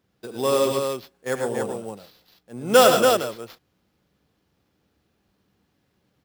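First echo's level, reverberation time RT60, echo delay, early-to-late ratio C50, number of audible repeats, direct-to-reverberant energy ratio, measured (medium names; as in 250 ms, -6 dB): -12.0 dB, no reverb, 74 ms, no reverb, 4, no reverb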